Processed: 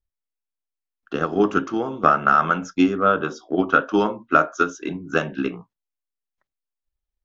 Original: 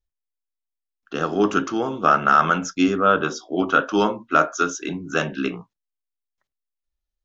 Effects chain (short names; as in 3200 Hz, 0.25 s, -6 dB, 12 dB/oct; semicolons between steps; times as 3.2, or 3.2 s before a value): high shelf 3400 Hz -9.5 dB; transient shaper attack +6 dB, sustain 0 dB; gain -2 dB